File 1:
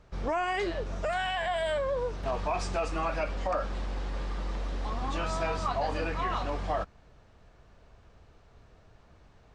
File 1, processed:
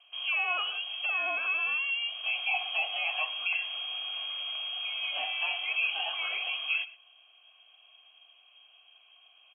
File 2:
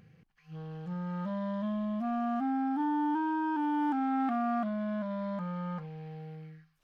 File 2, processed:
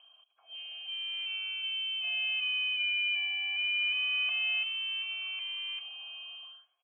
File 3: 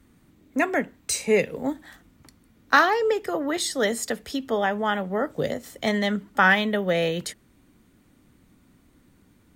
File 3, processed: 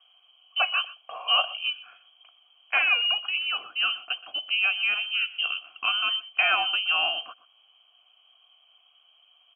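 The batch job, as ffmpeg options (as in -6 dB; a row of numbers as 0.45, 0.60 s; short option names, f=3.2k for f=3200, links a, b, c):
-filter_complex "[0:a]equalizer=f=110:w=0.68:g=6,acontrast=54,lowpass=f=2.8k:t=q:w=0.5098,lowpass=f=2.8k:t=q:w=0.6013,lowpass=f=2.8k:t=q:w=0.9,lowpass=f=2.8k:t=q:w=2.563,afreqshift=-3300,asplit=3[a][b][c];[a]bandpass=f=730:t=q:w=8,volume=0dB[d];[b]bandpass=f=1.09k:t=q:w=8,volume=-6dB[e];[c]bandpass=f=2.44k:t=q:w=8,volume=-9dB[f];[d][e][f]amix=inputs=3:normalize=0,asplit=2[g][h];[h]adelay=122.4,volume=-18dB,highshelf=f=4k:g=-2.76[i];[g][i]amix=inputs=2:normalize=0,volume=5dB"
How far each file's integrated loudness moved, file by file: +2.5, +2.0, -0.5 LU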